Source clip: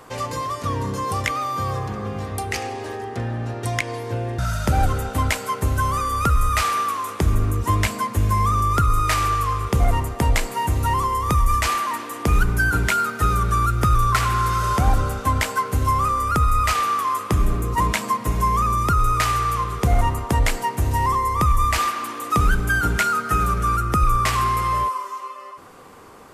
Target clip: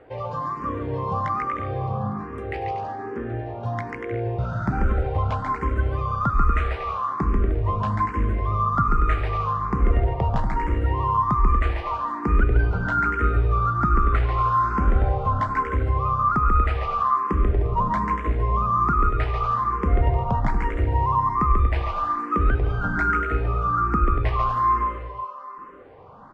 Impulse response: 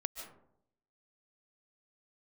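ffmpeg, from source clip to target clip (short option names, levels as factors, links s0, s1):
-filter_complex "[0:a]lowpass=1500,asplit=2[s0][s1];[s1]aecho=0:1:140|238|306.6|354.6|388.2:0.631|0.398|0.251|0.158|0.1[s2];[s0][s2]amix=inputs=2:normalize=0,asplit=2[s3][s4];[s4]afreqshift=1.2[s5];[s3][s5]amix=inputs=2:normalize=1"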